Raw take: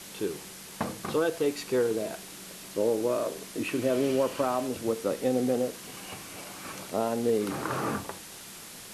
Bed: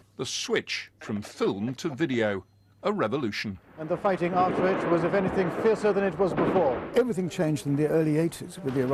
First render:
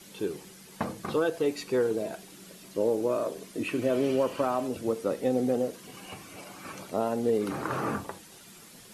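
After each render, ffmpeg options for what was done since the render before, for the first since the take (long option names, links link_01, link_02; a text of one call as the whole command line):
ffmpeg -i in.wav -af "afftdn=noise_reduction=9:noise_floor=-45" out.wav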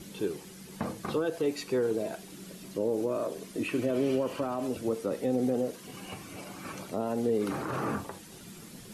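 ffmpeg -i in.wav -filter_complex "[0:a]acrossover=split=370[link_01][link_02];[link_01]acompressor=mode=upward:threshold=-39dB:ratio=2.5[link_03];[link_02]alimiter=level_in=2dB:limit=-24dB:level=0:latency=1:release=48,volume=-2dB[link_04];[link_03][link_04]amix=inputs=2:normalize=0" out.wav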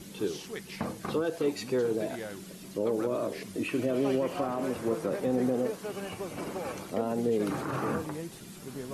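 ffmpeg -i in.wav -i bed.wav -filter_complex "[1:a]volume=-14dB[link_01];[0:a][link_01]amix=inputs=2:normalize=0" out.wav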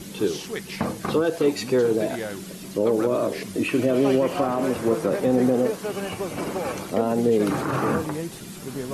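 ffmpeg -i in.wav -af "volume=8dB" out.wav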